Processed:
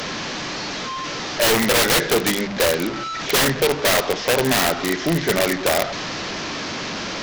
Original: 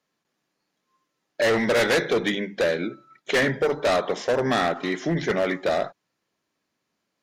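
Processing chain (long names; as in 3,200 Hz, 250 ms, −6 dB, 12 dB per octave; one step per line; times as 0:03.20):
linear delta modulator 32 kbit/s, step −26 dBFS
wrap-around overflow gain 17.5 dB
level +4.5 dB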